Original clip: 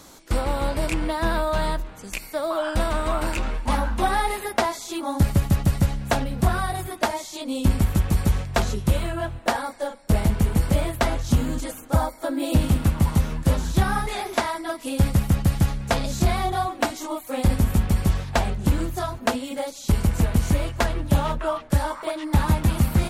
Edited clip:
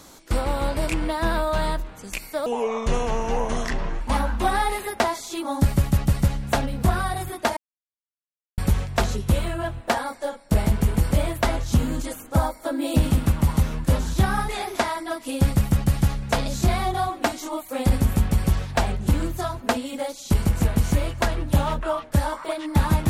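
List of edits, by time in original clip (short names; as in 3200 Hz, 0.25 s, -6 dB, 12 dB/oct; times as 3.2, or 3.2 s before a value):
2.46–3.59 speed 73%
7.15–8.16 mute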